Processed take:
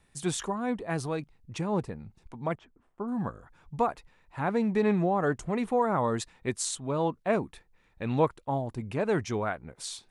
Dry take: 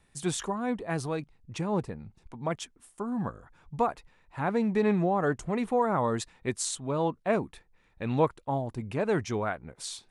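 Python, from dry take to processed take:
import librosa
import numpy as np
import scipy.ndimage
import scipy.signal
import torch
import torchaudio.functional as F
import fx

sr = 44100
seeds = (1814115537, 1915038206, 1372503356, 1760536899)

y = fx.lowpass(x, sr, hz=1200.0, slope=12, at=(2.54, 3.07), fade=0.02)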